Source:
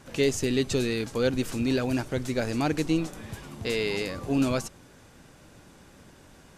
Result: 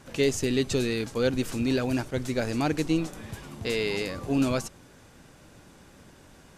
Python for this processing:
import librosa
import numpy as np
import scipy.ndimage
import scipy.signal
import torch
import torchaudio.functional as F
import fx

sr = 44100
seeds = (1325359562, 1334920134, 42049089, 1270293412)

y = fx.attack_slew(x, sr, db_per_s=480.0)